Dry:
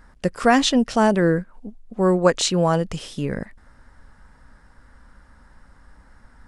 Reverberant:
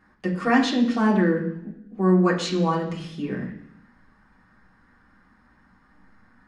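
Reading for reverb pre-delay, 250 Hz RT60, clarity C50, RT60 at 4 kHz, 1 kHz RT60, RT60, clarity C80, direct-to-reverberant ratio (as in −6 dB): 3 ms, 0.90 s, 8.0 dB, 0.95 s, 0.70 s, 0.70 s, 11.0 dB, −5.0 dB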